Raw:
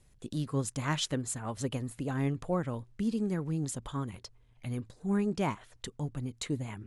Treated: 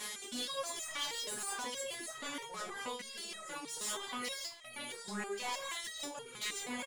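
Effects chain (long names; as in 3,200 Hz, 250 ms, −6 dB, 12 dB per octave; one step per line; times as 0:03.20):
compressor on every frequency bin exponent 0.6
on a send: single-tap delay 517 ms −23.5 dB
on the sum: reverb whose tail is shaped and stops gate 200 ms rising, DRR −3.5 dB
reversed playback
downward compressor 4 to 1, threshold −42 dBFS, peak gain reduction 20.5 dB
reversed playback
spectral tilt +3 dB per octave
reverb reduction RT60 1.4 s
high-shelf EQ 6,000 Hz −5 dB
mid-hump overdrive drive 26 dB, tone 6,100 Hz, clips at −24.5 dBFS
step-sequenced resonator 6.3 Hz 210–640 Hz
level +9 dB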